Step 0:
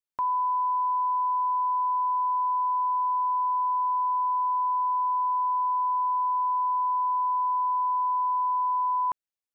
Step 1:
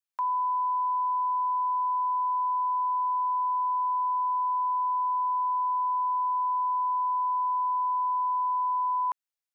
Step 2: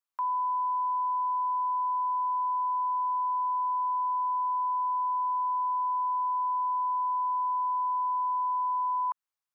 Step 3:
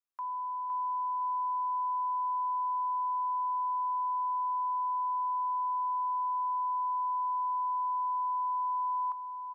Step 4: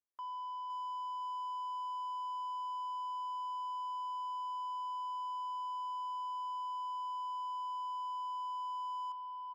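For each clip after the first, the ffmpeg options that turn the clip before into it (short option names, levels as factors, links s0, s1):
-af "highpass=790"
-af "equalizer=f=1100:t=o:w=0.84:g=9.5,alimiter=limit=0.0708:level=0:latency=1,volume=0.75"
-af "aecho=1:1:512|1024|1536|2048:0.422|0.135|0.0432|0.0138,volume=0.447"
-filter_complex "[0:a]adynamicsmooth=sensitivity=2:basefreq=950,asplit=2[s0][s1];[s1]highpass=f=720:p=1,volume=6.31,asoftclip=type=tanh:threshold=0.0316[s2];[s0][s2]amix=inputs=2:normalize=0,lowpass=f=1100:p=1,volume=0.501,volume=0.562"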